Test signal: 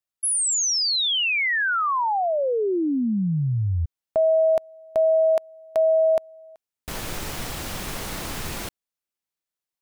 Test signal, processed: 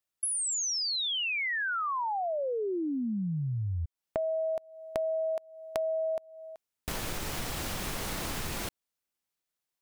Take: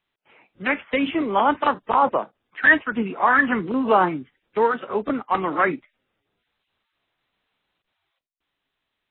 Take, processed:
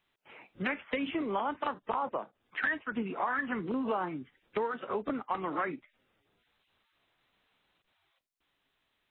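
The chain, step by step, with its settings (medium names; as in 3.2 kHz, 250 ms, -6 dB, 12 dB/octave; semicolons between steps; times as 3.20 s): compression 5:1, threshold -33 dBFS; trim +1.5 dB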